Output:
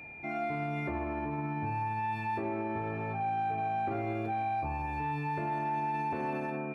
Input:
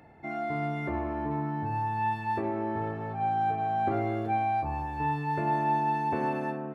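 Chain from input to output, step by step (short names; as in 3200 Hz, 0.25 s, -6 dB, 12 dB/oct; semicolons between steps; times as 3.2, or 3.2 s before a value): soft clip -18 dBFS, distortion -27 dB; whine 2400 Hz -45 dBFS; limiter -26.5 dBFS, peak gain reduction 6.5 dB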